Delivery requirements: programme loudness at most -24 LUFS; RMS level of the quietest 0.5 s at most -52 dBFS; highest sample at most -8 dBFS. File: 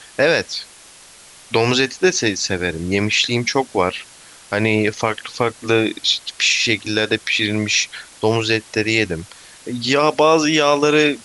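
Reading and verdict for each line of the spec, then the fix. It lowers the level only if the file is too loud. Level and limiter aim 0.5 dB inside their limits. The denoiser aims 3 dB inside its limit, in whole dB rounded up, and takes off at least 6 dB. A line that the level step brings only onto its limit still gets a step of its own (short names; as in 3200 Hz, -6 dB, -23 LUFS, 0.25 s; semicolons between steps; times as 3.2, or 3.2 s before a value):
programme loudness -17.5 LUFS: fail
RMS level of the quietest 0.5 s -44 dBFS: fail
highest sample -3.0 dBFS: fail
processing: denoiser 6 dB, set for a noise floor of -44 dBFS; gain -7 dB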